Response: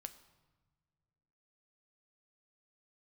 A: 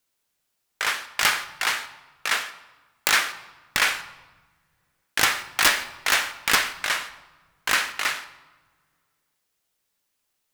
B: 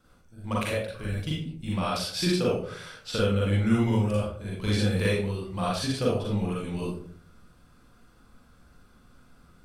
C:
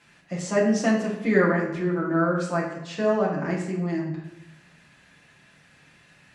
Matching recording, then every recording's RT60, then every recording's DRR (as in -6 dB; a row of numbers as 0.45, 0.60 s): A; not exponential, 0.60 s, 0.90 s; 9.5, -6.0, -5.0 dB